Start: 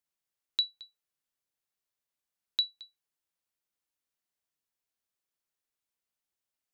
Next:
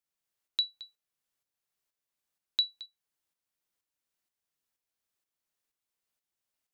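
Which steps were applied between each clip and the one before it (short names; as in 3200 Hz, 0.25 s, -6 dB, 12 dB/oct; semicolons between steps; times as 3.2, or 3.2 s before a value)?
tremolo saw up 2.1 Hz, depth 55%; gain +4 dB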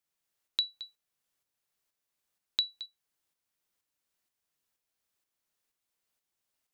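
compressor, threshold -28 dBFS, peak gain reduction 6 dB; gain +3 dB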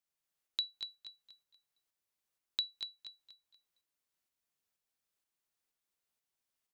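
feedback echo 0.239 s, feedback 34%, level -6.5 dB; gain -5.5 dB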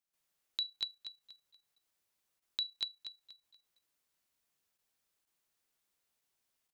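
level quantiser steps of 10 dB; gain +7 dB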